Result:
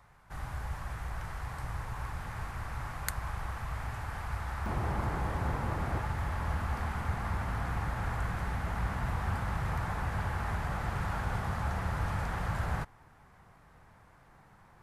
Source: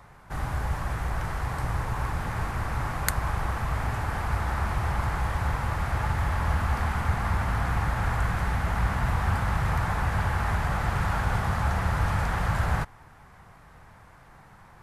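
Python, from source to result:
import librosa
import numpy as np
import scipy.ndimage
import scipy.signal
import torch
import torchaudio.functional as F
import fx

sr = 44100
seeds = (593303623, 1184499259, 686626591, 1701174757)

y = fx.peak_eq(x, sr, hz=310.0, db=fx.steps((0.0, -5.0), (4.66, 10.5), (6.0, 2.5)), octaves=2.2)
y = y * 10.0 ** (-8.0 / 20.0)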